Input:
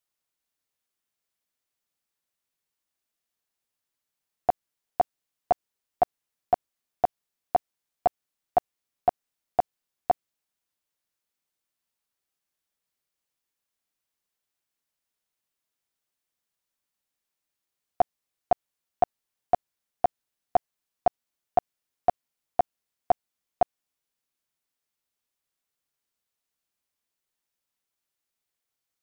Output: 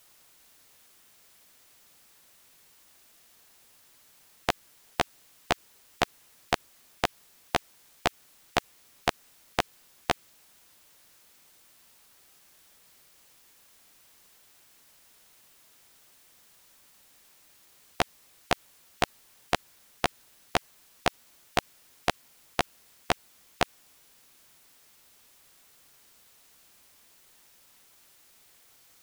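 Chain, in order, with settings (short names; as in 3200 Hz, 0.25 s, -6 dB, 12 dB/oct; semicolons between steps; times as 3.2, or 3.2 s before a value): spectral compressor 4:1; gain +7.5 dB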